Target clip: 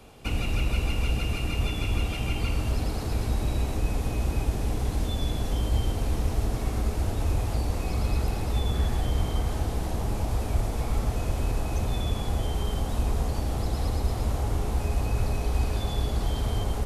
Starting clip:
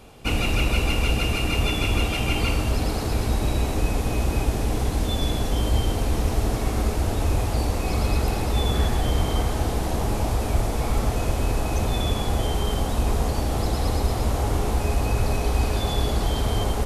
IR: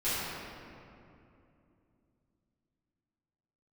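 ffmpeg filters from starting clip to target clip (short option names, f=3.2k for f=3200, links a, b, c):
-filter_complex "[0:a]acrossover=split=190[a][b];[b]acompressor=threshold=-32dB:ratio=2.5[c];[a][c]amix=inputs=2:normalize=0,volume=-3dB"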